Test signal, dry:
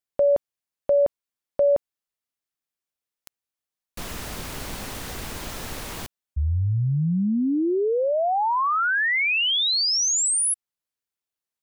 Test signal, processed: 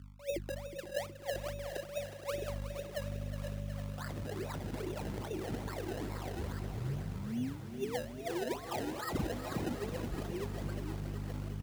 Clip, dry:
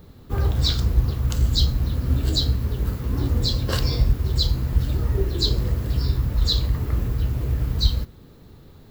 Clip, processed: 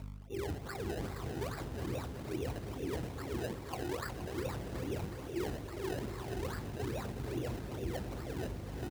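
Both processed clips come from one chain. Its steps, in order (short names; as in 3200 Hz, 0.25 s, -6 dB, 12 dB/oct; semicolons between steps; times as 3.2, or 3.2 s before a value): tape spacing loss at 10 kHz 33 dB; split-band echo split 440 Hz, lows 0.658 s, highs 0.295 s, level -3.5 dB; wah 2 Hz 340–2200 Hz, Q 9.8; hum 50 Hz, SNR 15 dB; decimation with a swept rate 27×, swing 100% 2.4 Hz; reverse; compressor 6:1, threshold -54 dBFS; reverse; HPF 55 Hz; low shelf 330 Hz +9 dB; echo 0.471 s -11 dB; lo-fi delay 0.366 s, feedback 80%, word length 12-bit, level -10.5 dB; gain +13.5 dB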